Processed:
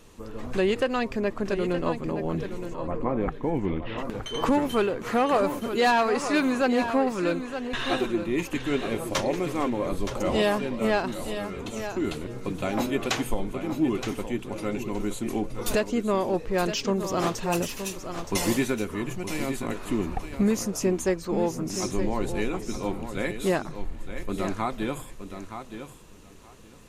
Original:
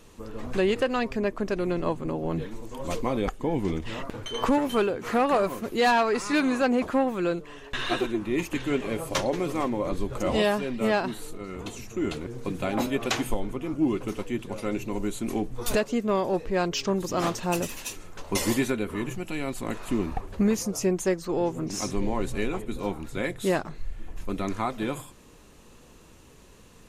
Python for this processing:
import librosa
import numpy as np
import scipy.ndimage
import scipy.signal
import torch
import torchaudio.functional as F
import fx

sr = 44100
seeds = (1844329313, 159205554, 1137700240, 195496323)

p1 = fx.lowpass(x, sr, hz=fx.line((2.73, 1400.0), (3.97, 3600.0)), slope=24, at=(2.73, 3.97), fade=0.02)
y = p1 + fx.echo_feedback(p1, sr, ms=920, feedback_pct=16, wet_db=-9.5, dry=0)